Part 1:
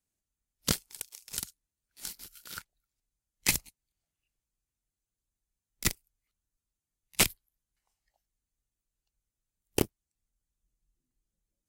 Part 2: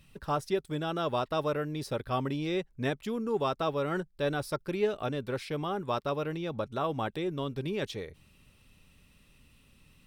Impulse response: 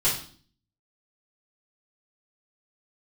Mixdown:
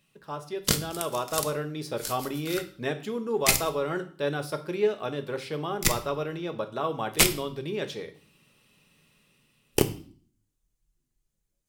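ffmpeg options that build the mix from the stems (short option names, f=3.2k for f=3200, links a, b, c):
-filter_complex "[0:a]volume=3dB,asplit=2[a][b];[b]volume=-18dB[c];[1:a]highpass=180,dynaudnorm=f=150:g=13:m=7dB,volume=-7dB,asplit=2[d][e];[e]volume=-17.5dB[f];[2:a]atrim=start_sample=2205[g];[c][f]amix=inputs=2:normalize=0[h];[h][g]afir=irnorm=-1:irlink=0[i];[a][d][i]amix=inputs=3:normalize=0"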